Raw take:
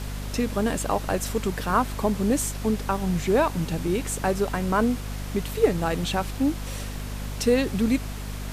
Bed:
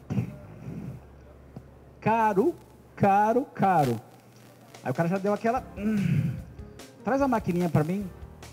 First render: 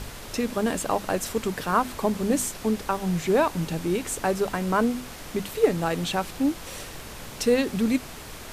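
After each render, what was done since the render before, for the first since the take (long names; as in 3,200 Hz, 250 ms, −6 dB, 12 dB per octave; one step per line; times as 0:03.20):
mains-hum notches 50/100/150/200/250 Hz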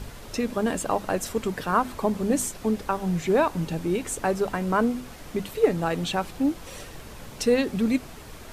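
broadband denoise 6 dB, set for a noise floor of −40 dBFS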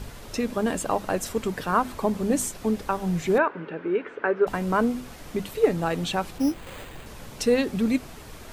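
0:03.38–0:04.47: loudspeaker in its box 330–2,500 Hz, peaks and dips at 420 Hz +7 dB, 760 Hz −6 dB, 1,500 Hz +8 dB
0:06.38–0:07.06: bad sample-rate conversion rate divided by 8×, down none, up hold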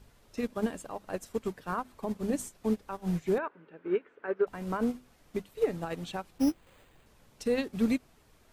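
brickwall limiter −17 dBFS, peak gain reduction 8.5 dB
expander for the loud parts 2.5 to 1, over −34 dBFS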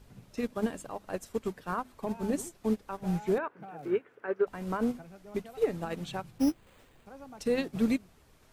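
mix in bed −24 dB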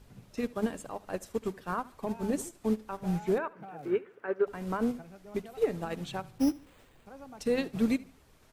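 repeating echo 74 ms, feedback 35%, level −21.5 dB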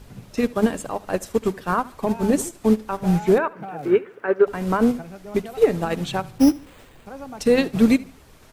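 level +11.5 dB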